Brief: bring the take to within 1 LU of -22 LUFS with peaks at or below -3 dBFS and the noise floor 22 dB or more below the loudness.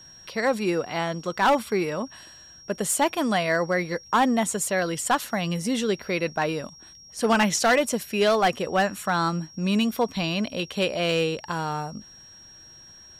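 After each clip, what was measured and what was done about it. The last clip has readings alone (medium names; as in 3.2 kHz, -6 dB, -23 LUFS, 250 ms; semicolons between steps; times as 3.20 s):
clipped samples 0.6%; clipping level -14.5 dBFS; steady tone 5.6 kHz; tone level -46 dBFS; loudness -24.5 LUFS; peak level -14.5 dBFS; loudness target -22.0 LUFS
-> clip repair -14.5 dBFS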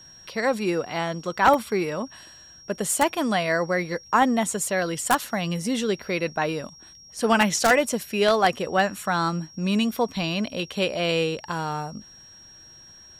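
clipped samples 0.0%; steady tone 5.6 kHz; tone level -46 dBFS
-> band-stop 5.6 kHz, Q 30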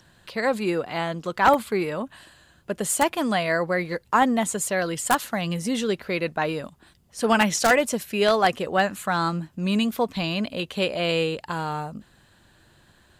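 steady tone not found; loudness -24.0 LUFS; peak level -5.5 dBFS; loudness target -22.0 LUFS
-> trim +2 dB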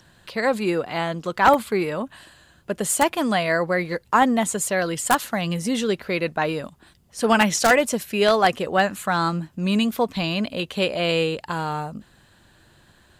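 loudness -22.0 LUFS; peak level -3.5 dBFS; noise floor -57 dBFS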